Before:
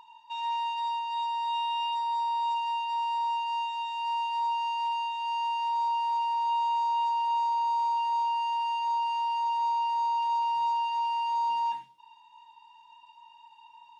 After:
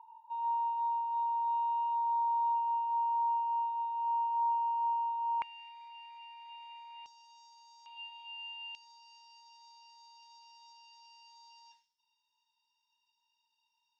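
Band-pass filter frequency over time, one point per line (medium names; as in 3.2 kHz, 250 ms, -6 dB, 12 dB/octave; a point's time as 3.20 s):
band-pass filter, Q 7.2
890 Hz
from 5.42 s 2.3 kHz
from 7.06 s 5.7 kHz
from 7.86 s 2.9 kHz
from 8.75 s 5.4 kHz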